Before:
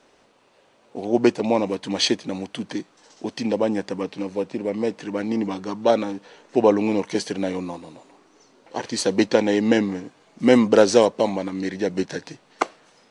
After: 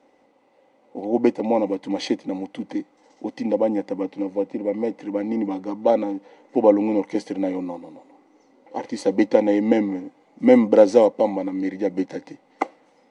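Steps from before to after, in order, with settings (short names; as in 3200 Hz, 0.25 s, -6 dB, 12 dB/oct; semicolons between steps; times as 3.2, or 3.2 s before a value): small resonant body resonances 290/520/780/2000 Hz, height 16 dB, ringing for 25 ms; gain -12.5 dB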